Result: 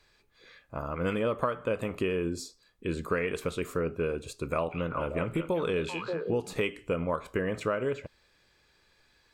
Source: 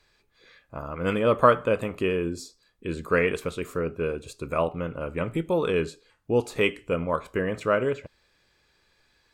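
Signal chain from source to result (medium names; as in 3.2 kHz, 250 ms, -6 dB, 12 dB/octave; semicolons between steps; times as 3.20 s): 4.38–6.53 s: repeats whose band climbs or falls 193 ms, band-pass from 3.2 kHz, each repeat -1.4 oct, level -2 dB; compression 10:1, threshold -25 dBFS, peak gain reduction 14 dB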